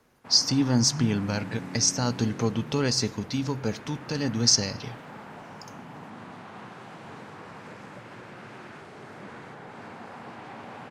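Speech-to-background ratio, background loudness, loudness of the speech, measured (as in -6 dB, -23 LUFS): 17.0 dB, -42.0 LUFS, -25.0 LUFS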